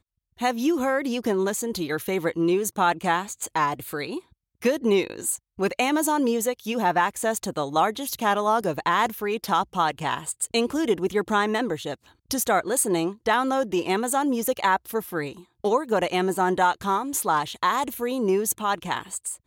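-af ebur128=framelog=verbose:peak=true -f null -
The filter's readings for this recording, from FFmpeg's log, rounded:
Integrated loudness:
  I:         -24.6 LUFS
  Threshold: -34.7 LUFS
Loudness range:
  LRA:         1.5 LU
  Threshold: -44.6 LUFS
  LRA low:   -25.4 LUFS
  LRA high:  -23.9 LUFS
True peak:
  Peak:       -9.6 dBFS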